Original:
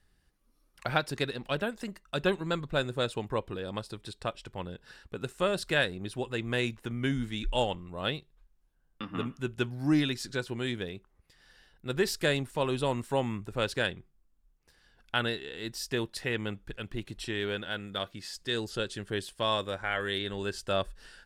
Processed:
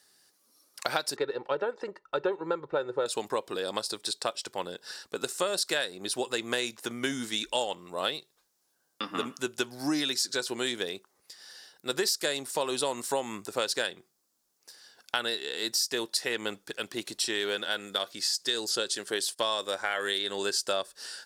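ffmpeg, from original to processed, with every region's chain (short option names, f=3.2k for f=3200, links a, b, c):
-filter_complex "[0:a]asettb=1/sr,asplit=3[a][b][c];[a]atrim=end=1.164[d];[b]atrim=start=1.16:end=3.06,asetpts=PTS-STARTPTS,afade=t=in:d=0.004:c=qsin,afade=t=out:st=1.896:d=0.004:c=qsin,lowpass=1.4k,aecho=1:1:2.2:0.64,atrim=end_sample=83790[e];[c]atrim=start=3.056[f];[d][e]acrossfade=d=0.004:c1=hsin:c2=qsin[g];[g][f]acrossfade=d=0.004:c1=qsin:c2=hsin,asettb=1/sr,asplit=3[h][i][j];[h]atrim=end=18.954[k];[i]atrim=start=18.95:end=19.39,asetpts=PTS-STARTPTS,afade=t=in:d=0.004:c=qsin,afade=t=out:st=0.436:d=0.004:c=qsin,highpass=f=180:p=1,agate=range=-21dB:threshold=-56dB:ratio=16:release=100:detection=peak[l];[j]atrim=start=19.386[m];[k][l]acrossfade=d=0.004:c1=hsin:c2=qsin[n];[n][m]acrossfade=d=0.004:c1=qsin:c2=hsin,highpass=390,highshelf=f=3.7k:t=q:w=1.5:g=8.5,acompressor=threshold=-33dB:ratio=6,volume=7.5dB"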